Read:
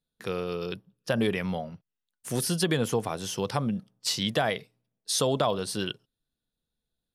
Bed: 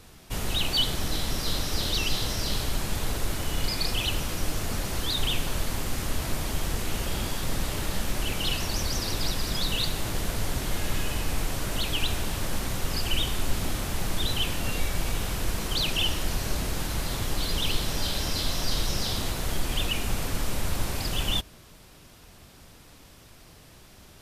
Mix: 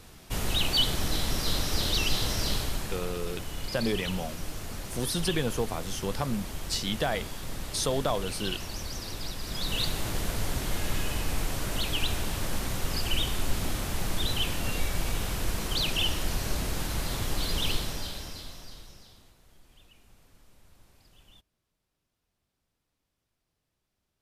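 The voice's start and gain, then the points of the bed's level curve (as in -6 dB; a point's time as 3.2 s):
2.65 s, -3.0 dB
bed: 2.48 s 0 dB
3.11 s -8 dB
9.39 s -8 dB
9.8 s -1.5 dB
17.71 s -1.5 dB
19.38 s -30.5 dB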